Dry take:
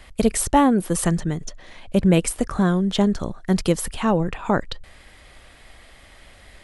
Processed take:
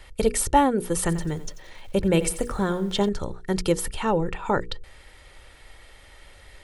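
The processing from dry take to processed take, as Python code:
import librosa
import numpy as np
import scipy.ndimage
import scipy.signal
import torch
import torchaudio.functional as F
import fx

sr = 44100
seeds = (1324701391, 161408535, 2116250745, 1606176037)

y = fx.hum_notches(x, sr, base_hz=60, count=8)
y = y + 0.43 * np.pad(y, (int(2.2 * sr / 1000.0), 0))[:len(y)]
y = fx.echo_crushed(y, sr, ms=89, feedback_pct=35, bits=7, wet_db=-14, at=(1.0, 3.09))
y = F.gain(torch.from_numpy(y), -2.5).numpy()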